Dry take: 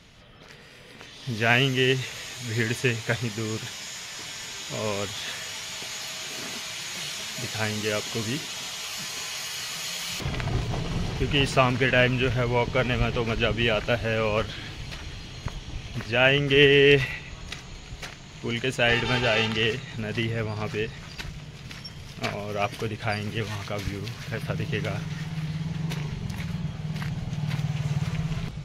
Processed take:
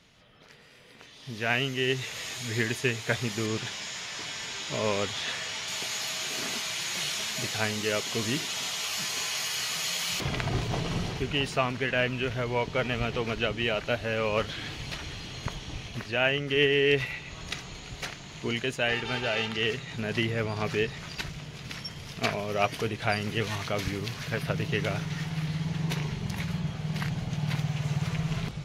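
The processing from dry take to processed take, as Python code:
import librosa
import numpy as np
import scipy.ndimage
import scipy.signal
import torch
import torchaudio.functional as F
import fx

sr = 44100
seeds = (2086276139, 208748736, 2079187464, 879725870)

y = fx.air_absorb(x, sr, metres=52.0, at=(3.46, 5.68))
y = fx.rider(y, sr, range_db=4, speed_s=0.5)
y = fx.low_shelf(y, sr, hz=96.0, db=-8.0)
y = F.gain(torch.from_numpy(y), -2.0).numpy()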